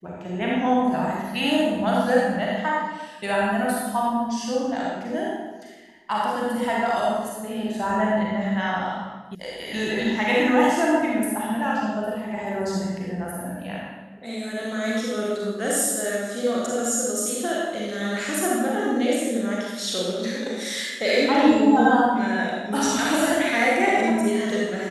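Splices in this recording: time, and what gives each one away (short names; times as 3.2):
9.35 sound cut off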